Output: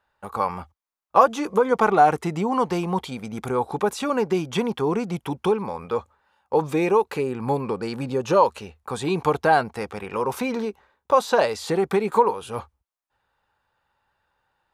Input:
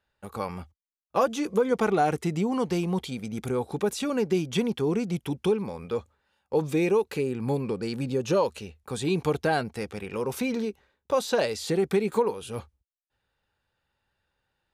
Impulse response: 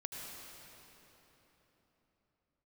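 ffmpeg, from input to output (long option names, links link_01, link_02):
-af "equalizer=frequency=990:width=0.96:gain=12"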